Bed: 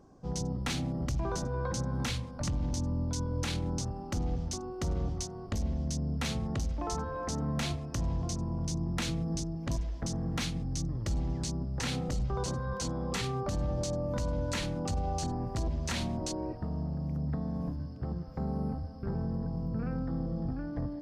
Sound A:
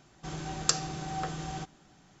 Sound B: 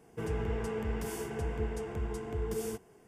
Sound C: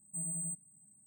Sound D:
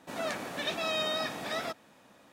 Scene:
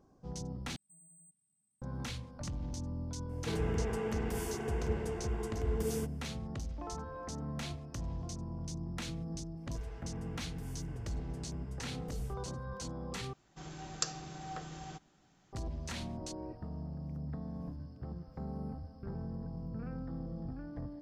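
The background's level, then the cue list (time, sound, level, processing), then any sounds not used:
bed -7.5 dB
0.76 replace with C -18 dB + limiter -35 dBFS
3.29 add B -0.5 dB
9.57 add B -13.5 dB + bell 270 Hz -9.5 dB 1.1 oct
13.33 replace with A -8.5 dB
not used: D

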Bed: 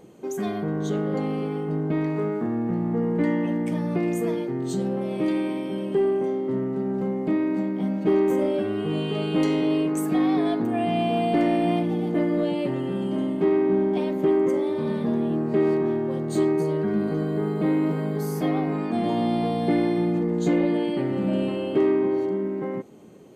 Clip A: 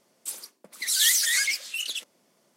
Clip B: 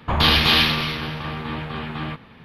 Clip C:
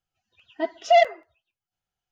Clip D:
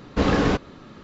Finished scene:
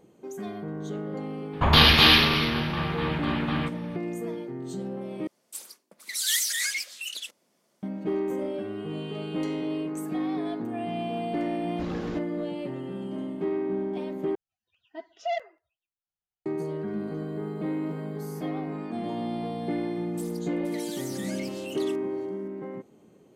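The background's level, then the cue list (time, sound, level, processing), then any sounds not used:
bed -8 dB
1.53 add B
5.27 replace with A -4.5 dB
11.62 add D -17 dB
14.35 replace with C -13.5 dB
19.92 add A -8 dB + compressor, threshold -32 dBFS

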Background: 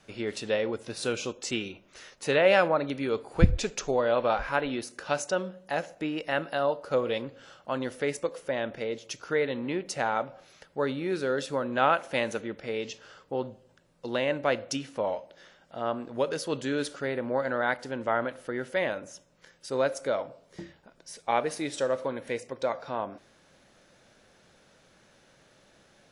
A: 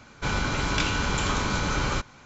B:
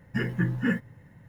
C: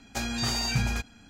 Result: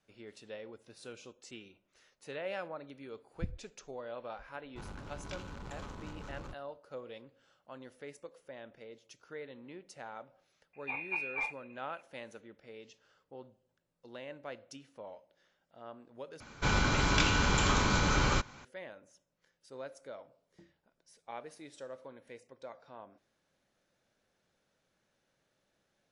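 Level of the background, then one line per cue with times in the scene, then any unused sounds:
background -18 dB
4.53 add A -18 dB + Wiener smoothing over 25 samples
10.73 add B -11 dB + inverted band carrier 2600 Hz
16.4 replace with A -2 dB
not used: C

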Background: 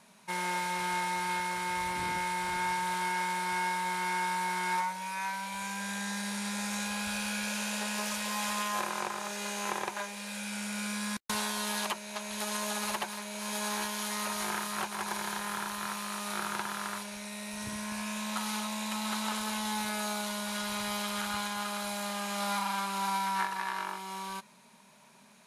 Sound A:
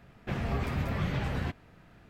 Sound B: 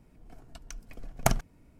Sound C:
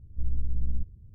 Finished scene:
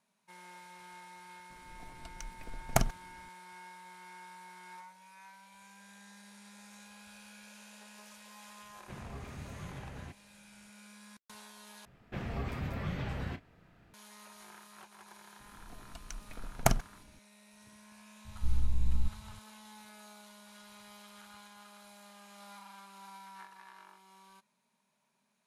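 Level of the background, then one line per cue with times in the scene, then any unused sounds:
background -19.5 dB
1.5 add B -2.5 dB
8.61 add A -14 dB
11.85 replace with A -6 dB + doubler 33 ms -12 dB
15.4 add B -1.5 dB
18.25 add C -1 dB

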